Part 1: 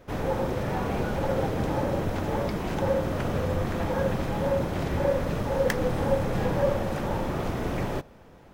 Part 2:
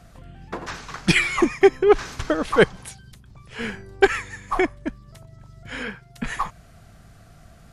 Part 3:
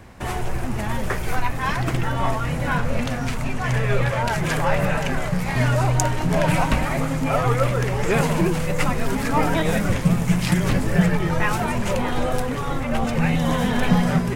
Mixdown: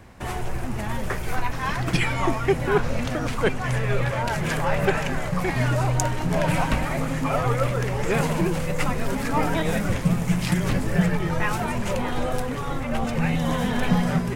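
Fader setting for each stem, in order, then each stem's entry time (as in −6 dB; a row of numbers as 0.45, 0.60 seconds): −14.0, −7.5, −3.0 decibels; 2.45, 0.85, 0.00 seconds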